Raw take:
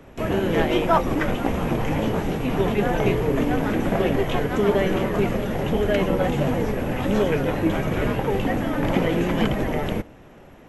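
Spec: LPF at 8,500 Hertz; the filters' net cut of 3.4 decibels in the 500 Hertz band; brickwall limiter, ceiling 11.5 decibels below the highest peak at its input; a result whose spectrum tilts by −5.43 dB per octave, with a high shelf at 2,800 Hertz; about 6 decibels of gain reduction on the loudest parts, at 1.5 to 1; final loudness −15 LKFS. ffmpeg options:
ffmpeg -i in.wav -af "lowpass=8500,equalizer=frequency=500:width_type=o:gain=-4,highshelf=frequency=2800:gain=-8.5,acompressor=threshold=-33dB:ratio=1.5,volume=19.5dB,alimiter=limit=-6dB:level=0:latency=1" out.wav

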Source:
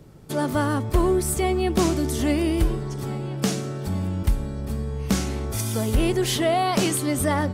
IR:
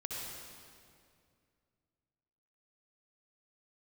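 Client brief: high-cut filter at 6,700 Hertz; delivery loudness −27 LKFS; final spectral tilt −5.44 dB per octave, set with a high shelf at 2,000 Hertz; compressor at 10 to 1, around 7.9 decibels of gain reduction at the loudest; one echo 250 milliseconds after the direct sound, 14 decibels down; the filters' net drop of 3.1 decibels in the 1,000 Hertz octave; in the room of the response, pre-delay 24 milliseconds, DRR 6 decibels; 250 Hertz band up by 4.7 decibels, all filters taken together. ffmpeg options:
-filter_complex "[0:a]lowpass=6700,equalizer=frequency=250:width_type=o:gain=7,equalizer=frequency=1000:width_type=o:gain=-6.5,highshelf=frequency=2000:gain=5.5,acompressor=threshold=-21dB:ratio=10,aecho=1:1:250:0.2,asplit=2[link_01][link_02];[1:a]atrim=start_sample=2205,adelay=24[link_03];[link_02][link_03]afir=irnorm=-1:irlink=0,volume=-7dB[link_04];[link_01][link_04]amix=inputs=2:normalize=0,volume=-2dB"

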